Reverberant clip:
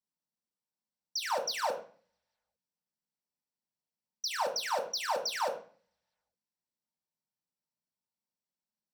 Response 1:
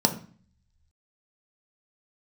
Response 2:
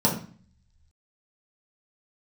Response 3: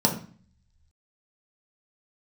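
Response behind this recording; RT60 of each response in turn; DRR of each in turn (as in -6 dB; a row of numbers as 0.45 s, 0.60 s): 3; 0.45 s, 0.45 s, 0.45 s; 4.5 dB, -4.0 dB, 0.0 dB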